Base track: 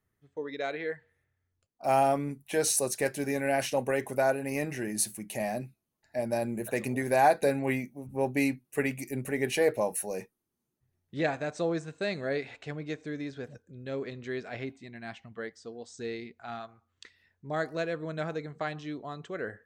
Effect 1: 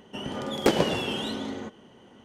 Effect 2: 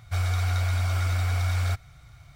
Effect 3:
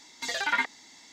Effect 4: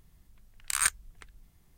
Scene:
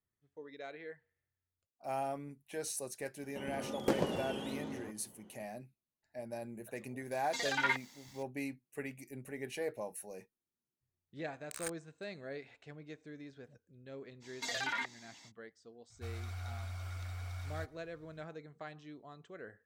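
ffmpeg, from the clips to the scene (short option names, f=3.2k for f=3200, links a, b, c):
-filter_complex "[3:a]asplit=2[a][b];[0:a]volume=-13dB[c];[1:a]equalizer=f=3.3k:w=0.46:g=-6.5[d];[a]aeval=exprs='val(0)*gte(abs(val(0)),0.00224)':c=same[e];[4:a]acrusher=bits=4:mix=0:aa=0.5[f];[b]alimiter=limit=-22dB:level=0:latency=1:release=22[g];[d]atrim=end=2.24,asetpts=PTS-STARTPTS,volume=-9dB,afade=t=in:d=0.004:c=hsin,afade=t=out:st=2.236:d=0.004:c=hsin,adelay=3220[h];[e]atrim=end=1.12,asetpts=PTS-STARTPTS,volume=-5.5dB,afade=t=in:d=0.004:c=hsin,afade=t=out:st=1.116:d=0.004:c=hsin,adelay=7110[i];[f]atrim=end=1.77,asetpts=PTS-STARTPTS,volume=-17dB,afade=t=in:d=0.004:c=hsin,afade=t=out:st=1.766:d=0.004:c=hsin,adelay=10810[j];[g]atrim=end=1.12,asetpts=PTS-STARTPTS,volume=-5.5dB,afade=t=in:d=0.05,afade=t=out:st=1.07:d=0.05,adelay=14200[k];[2:a]atrim=end=2.35,asetpts=PTS-STARTPTS,volume=-17.5dB,afade=t=in:d=0.004:c=hsin,afade=t=out:st=2.346:d=0.004:c=hsin,adelay=15900[l];[c][h][i][j][k][l]amix=inputs=6:normalize=0"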